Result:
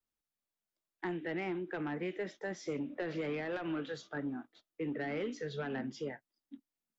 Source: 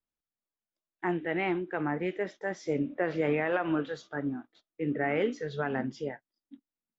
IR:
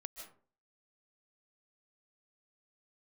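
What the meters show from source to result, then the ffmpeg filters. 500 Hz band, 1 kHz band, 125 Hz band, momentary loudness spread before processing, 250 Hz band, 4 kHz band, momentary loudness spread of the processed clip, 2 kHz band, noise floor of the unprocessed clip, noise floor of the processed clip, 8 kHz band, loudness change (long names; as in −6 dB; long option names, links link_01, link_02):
−7.5 dB, −9.5 dB, −7.0 dB, 8 LU, −6.5 dB, −3.0 dB, 10 LU, −7.5 dB, below −85 dBFS, below −85 dBFS, can't be measured, −7.0 dB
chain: -filter_complex "[0:a]asoftclip=type=tanh:threshold=-21dB,acrossover=split=160|380|1900[link_01][link_02][link_03][link_04];[link_01]acompressor=threshold=-54dB:ratio=4[link_05];[link_02]acompressor=threshold=-39dB:ratio=4[link_06];[link_03]acompressor=threshold=-43dB:ratio=4[link_07];[link_04]acompressor=threshold=-46dB:ratio=4[link_08];[link_05][link_06][link_07][link_08]amix=inputs=4:normalize=0"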